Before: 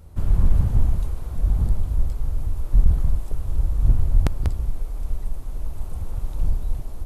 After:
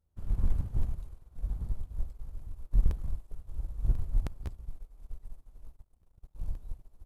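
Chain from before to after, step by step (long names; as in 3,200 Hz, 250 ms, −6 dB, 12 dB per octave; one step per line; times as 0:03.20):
0:05.76–0:06.35: power curve on the samples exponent 2
in parallel at −3 dB: hard clipping −19.5 dBFS, distortion −6 dB
on the sum: regular buffer underruns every 0.52 s, samples 64, repeat, from 0:00.83
expander for the loud parts 2.5 to 1, over −26 dBFS
level −8.5 dB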